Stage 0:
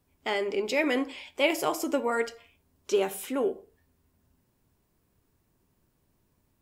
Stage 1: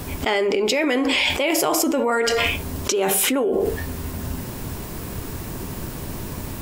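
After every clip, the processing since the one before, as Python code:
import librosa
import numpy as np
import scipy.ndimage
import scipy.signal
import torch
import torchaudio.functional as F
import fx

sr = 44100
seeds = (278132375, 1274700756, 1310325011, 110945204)

y = fx.env_flatten(x, sr, amount_pct=100)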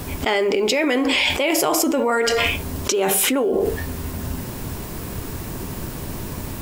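y = fx.quant_companded(x, sr, bits=8)
y = y * 10.0 ** (1.0 / 20.0)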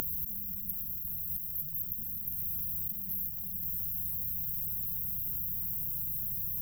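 y = fx.brickwall_bandstop(x, sr, low_hz=180.0, high_hz=12000.0)
y = fx.spectral_comp(y, sr, ratio=10.0)
y = y * 10.0 ** (1.5 / 20.0)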